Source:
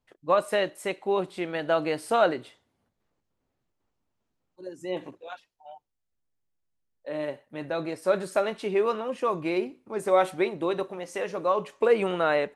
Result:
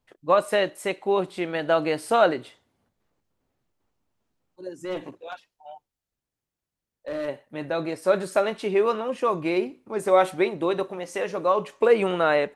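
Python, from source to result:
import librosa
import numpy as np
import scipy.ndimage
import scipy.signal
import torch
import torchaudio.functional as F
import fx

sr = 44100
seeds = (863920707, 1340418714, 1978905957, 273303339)

y = fx.clip_asym(x, sr, top_db=-30.5, bottom_db=-24.5, at=(4.72, 7.27), fade=0.02)
y = y * 10.0 ** (3.0 / 20.0)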